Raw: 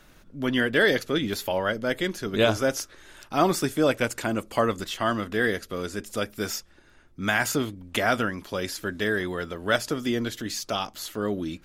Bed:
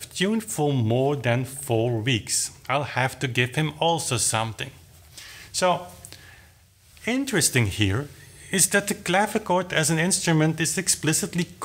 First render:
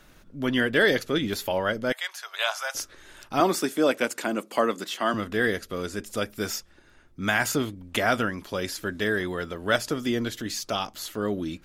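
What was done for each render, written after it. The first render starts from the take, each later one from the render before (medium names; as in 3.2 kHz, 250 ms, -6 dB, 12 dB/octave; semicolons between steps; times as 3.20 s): 1.92–2.75 s: steep high-pass 730 Hz; 3.40–5.14 s: high-pass 200 Hz 24 dB/octave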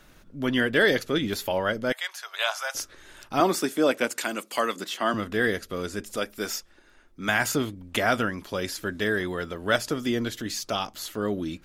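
4.18–4.76 s: tilt shelf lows -6.5 dB, about 1.2 kHz; 6.16–7.29 s: peaking EQ 110 Hz -12.5 dB 1.2 oct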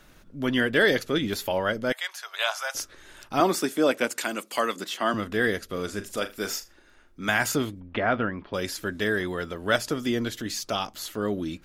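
5.65–7.26 s: flutter echo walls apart 6.9 m, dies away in 0.22 s; 7.80–8.54 s: Gaussian low-pass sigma 3 samples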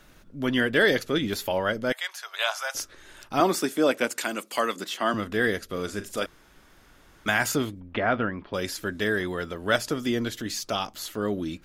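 6.26–7.26 s: room tone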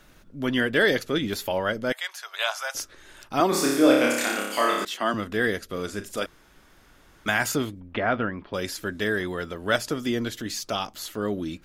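3.49–4.85 s: flutter echo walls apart 5 m, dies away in 0.89 s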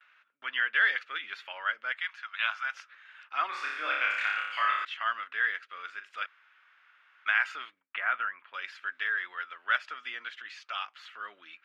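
Chebyshev band-pass 1.3–2.7 kHz, order 2; gate with hold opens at -55 dBFS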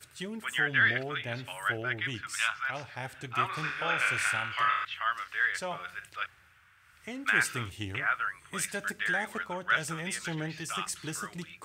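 add bed -15.5 dB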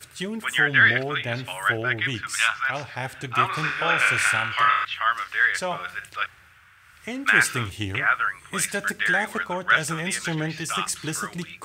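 trim +8 dB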